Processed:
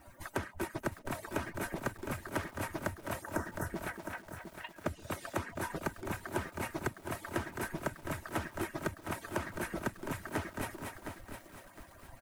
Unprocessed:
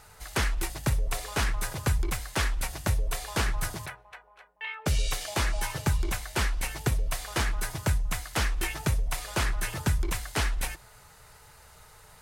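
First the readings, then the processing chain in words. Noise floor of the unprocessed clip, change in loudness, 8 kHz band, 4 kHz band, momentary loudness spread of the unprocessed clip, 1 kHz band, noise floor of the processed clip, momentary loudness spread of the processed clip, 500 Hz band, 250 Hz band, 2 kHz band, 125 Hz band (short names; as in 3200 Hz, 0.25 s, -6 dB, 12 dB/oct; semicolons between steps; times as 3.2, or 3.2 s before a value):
-54 dBFS, -9.5 dB, -13.0 dB, -15.0 dB, 5 LU, -4.5 dB, -57 dBFS, 8 LU, -1.5 dB, -2.0 dB, -7.0 dB, -12.5 dB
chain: median-filter separation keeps percussive; bit-crush 11-bit; high shelf 7100 Hz +8.5 dB; thinning echo 0.236 s, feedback 32%, high-pass 200 Hz, level -11.5 dB; spectral delete 3.22–3.66, 2000–5100 Hz; EQ curve 330 Hz 0 dB, 1600 Hz -6 dB, 4500 Hz -19 dB; compressor 16:1, threshold -41 dBFS, peak gain reduction 19.5 dB; comb 3.2 ms, depth 35%; lo-fi delay 0.711 s, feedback 35%, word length 10-bit, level -8 dB; gain +8 dB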